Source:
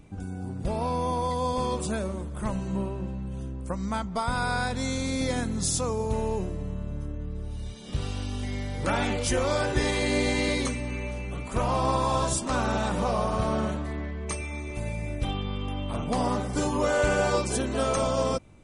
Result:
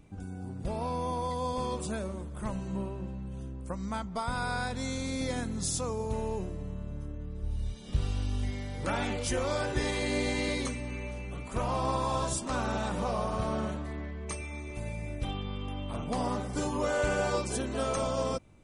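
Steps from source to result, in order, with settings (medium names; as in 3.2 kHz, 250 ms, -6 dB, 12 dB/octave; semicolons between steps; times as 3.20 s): 7.42–8.51 s: bass shelf 93 Hz +10.5 dB; trim -5 dB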